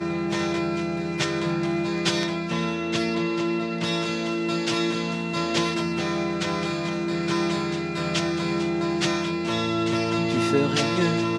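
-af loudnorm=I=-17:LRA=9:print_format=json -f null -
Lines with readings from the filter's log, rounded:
"input_i" : "-24.7",
"input_tp" : "-8.9",
"input_lra" : "2.2",
"input_thresh" : "-34.7",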